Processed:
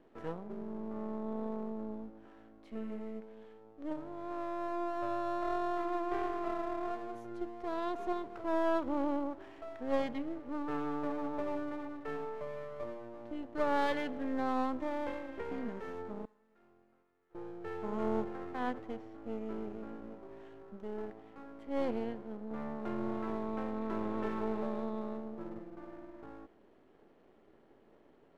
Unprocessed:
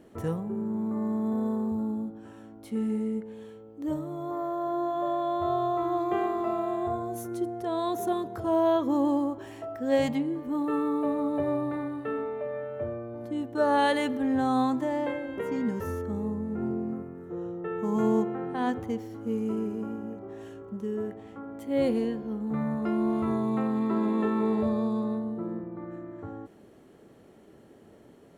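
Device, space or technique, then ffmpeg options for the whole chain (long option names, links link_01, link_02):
crystal radio: -filter_complex "[0:a]asettb=1/sr,asplit=3[link_01][link_02][link_03];[link_01]atrim=end=16.254[link_04];[link_02]atrim=start=16.25:end=17.35,asetpts=PTS-STARTPTS,afade=type=in:duration=0.004:curve=qsin,afade=type=out:start_time=1.096:duration=0.004:curve=qsin,aderivative[link_05];[link_03]atrim=start=17.346[link_06];[link_04][link_05]acrossfade=duration=0.004:curve1=hsin:curve2=qsin[link_07];[link_07][link_06]acrossfade=duration=0.004:curve1=qsin:curve2=hsin,highpass=250,lowpass=3100,aeval=exprs='if(lt(val(0),0),0.251*val(0),val(0))':channel_layout=same,volume=-4.5dB"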